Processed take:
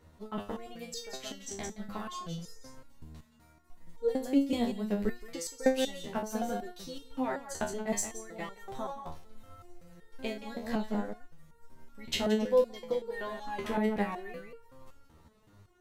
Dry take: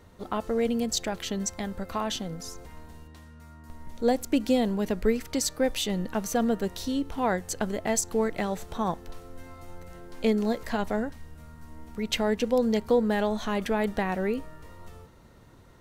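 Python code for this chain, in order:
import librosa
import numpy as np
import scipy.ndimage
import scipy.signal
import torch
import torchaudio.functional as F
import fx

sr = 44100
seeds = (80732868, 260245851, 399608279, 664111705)

y = fx.transient(x, sr, attack_db=3, sustain_db=-5)
y = y + 10.0 ** (-8.0 / 20.0) * np.pad(y, (int(172 * sr / 1000.0), 0))[:len(y)]
y = fx.resonator_held(y, sr, hz=5.3, low_hz=79.0, high_hz=460.0)
y = y * 10.0 ** (3.0 / 20.0)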